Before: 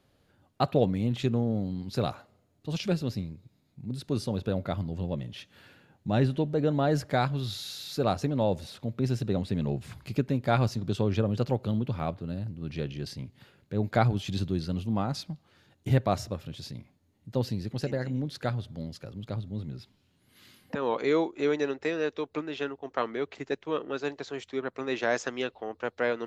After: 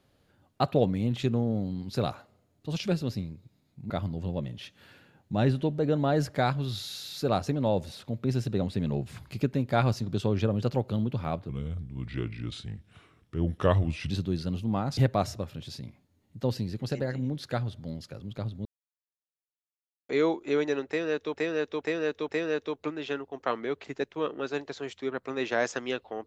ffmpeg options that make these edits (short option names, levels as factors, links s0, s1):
-filter_complex "[0:a]asplit=10[s0][s1][s2][s3][s4][s5][s6][s7][s8][s9];[s0]atrim=end=3.902[s10];[s1]atrim=start=4.648:end=12.244[s11];[s2]atrim=start=12.24:end=14.33,asetpts=PTS-STARTPTS,asetrate=35280,aresample=44100,atrim=end_sample=115211,asetpts=PTS-STARTPTS[s12];[s3]atrim=start=14.326:end=15.202[s13];[s4]atrim=start=15.888:end=19.57,asetpts=PTS-STARTPTS,afade=t=out:st=3.678:d=0.004:c=hsin[s14];[s5]atrim=start=19.57:end=21.01,asetpts=PTS-STARTPTS,volume=0[s15];[s6]atrim=start=21.01:end=22.262,asetpts=PTS-STARTPTS,afade=t=in:d=0.004:c=hsin[s16];[s7]atrim=start=21.788:end=22.262[s17];[s8]atrim=start=21.788:end=22.262[s18];[s9]atrim=start=21.788[s19];[s10][s11]acrossfade=d=0.004:c1=hsin:c2=hsin[s20];[s20][s12]acrossfade=d=0.004:c1=hsin:c2=hsin[s21];[s21][s13]acrossfade=d=0.004:c1=hsin:c2=hsin[s22];[s14][s15][s16]concat=n=3:v=0:a=1[s23];[s22][s23]acrossfade=d=0.004:c1=hsin:c2=hsin[s24];[s24][s17]acrossfade=d=0.004:c1=hsin:c2=hsin[s25];[s25][s18]acrossfade=d=0.004:c1=hsin:c2=hsin[s26];[s26][s19]acrossfade=d=0.004:c1=hsin:c2=hsin"